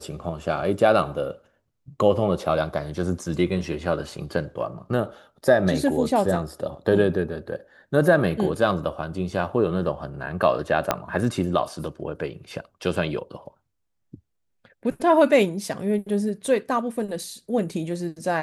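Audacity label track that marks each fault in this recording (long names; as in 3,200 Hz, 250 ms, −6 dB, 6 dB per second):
10.910000	10.910000	click −5 dBFS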